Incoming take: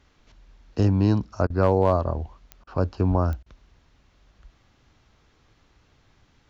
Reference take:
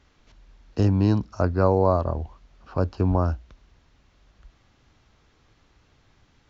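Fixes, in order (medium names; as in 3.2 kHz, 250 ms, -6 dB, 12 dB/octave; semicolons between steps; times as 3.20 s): clip repair -8 dBFS; de-click; interpolate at 1.47/2.64/3.43 s, 30 ms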